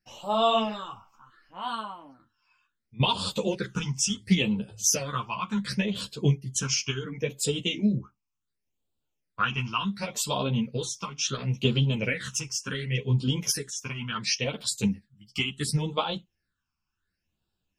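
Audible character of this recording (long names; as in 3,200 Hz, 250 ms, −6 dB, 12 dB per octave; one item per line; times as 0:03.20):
phaser sweep stages 8, 0.7 Hz, lowest notch 510–1,900 Hz
tremolo triangle 0.7 Hz, depth 45%
a shimmering, thickened sound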